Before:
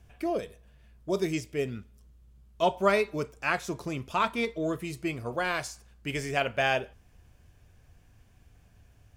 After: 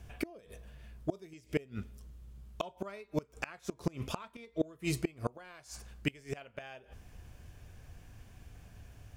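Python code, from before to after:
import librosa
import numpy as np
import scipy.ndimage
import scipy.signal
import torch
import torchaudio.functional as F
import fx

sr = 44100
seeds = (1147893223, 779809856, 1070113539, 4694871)

y = fx.gate_flip(x, sr, shuts_db=-24.0, range_db=-28)
y = y * 10.0 ** (5.5 / 20.0)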